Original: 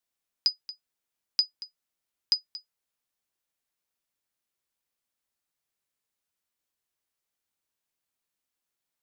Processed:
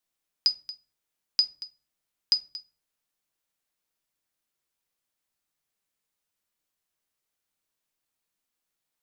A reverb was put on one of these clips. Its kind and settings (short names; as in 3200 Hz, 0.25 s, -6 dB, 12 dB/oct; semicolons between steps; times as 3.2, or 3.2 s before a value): shoebox room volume 270 m³, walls furnished, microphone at 0.54 m; gain +1.5 dB